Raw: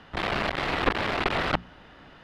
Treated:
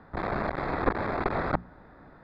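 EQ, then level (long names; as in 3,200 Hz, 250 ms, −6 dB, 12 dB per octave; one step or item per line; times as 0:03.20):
moving average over 15 samples
0.0 dB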